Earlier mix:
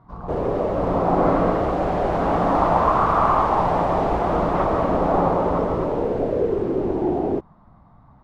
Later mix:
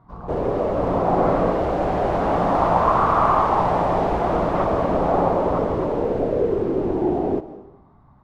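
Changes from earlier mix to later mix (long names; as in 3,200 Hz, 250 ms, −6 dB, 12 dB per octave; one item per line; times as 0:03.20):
speech: send −11.5 dB
background: send on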